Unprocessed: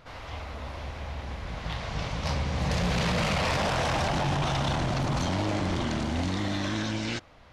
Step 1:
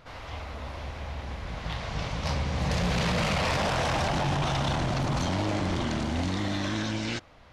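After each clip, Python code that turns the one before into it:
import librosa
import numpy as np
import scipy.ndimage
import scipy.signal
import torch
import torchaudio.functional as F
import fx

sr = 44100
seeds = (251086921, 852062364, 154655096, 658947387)

y = x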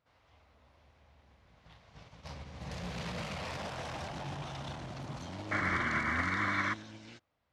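y = scipy.signal.sosfilt(scipy.signal.butter(2, 60.0, 'highpass', fs=sr, output='sos'), x)
y = fx.spec_paint(y, sr, seeds[0], shape='noise', start_s=5.51, length_s=1.23, low_hz=980.0, high_hz=2300.0, level_db=-25.0)
y = fx.upward_expand(y, sr, threshold_db=-35.0, expansion=2.5)
y = y * 10.0 ** (-6.5 / 20.0)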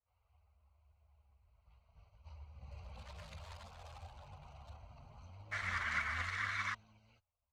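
y = fx.wiener(x, sr, points=25)
y = fx.tone_stack(y, sr, knobs='10-0-10')
y = fx.chorus_voices(y, sr, voices=6, hz=0.7, base_ms=11, depth_ms=2.6, mix_pct=65)
y = y * 10.0 ** (3.5 / 20.0)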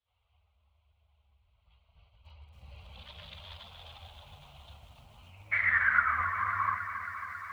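y = fx.filter_sweep_lowpass(x, sr, from_hz=3400.0, to_hz=1100.0, start_s=5.12, end_s=6.26, q=7.3)
y = fx.echo_filtered(y, sr, ms=70, feedback_pct=78, hz=1200.0, wet_db=-15.0)
y = fx.echo_crushed(y, sr, ms=273, feedback_pct=80, bits=10, wet_db=-11)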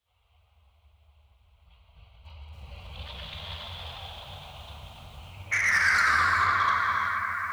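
y = 10.0 ** (-28.0 / 20.0) * np.tanh(x / 10.0 ** (-28.0 / 20.0))
y = fx.rev_gated(y, sr, seeds[1], gate_ms=480, shape='flat', drr_db=1.0)
y = y * 10.0 ** (7.0 / 20.0)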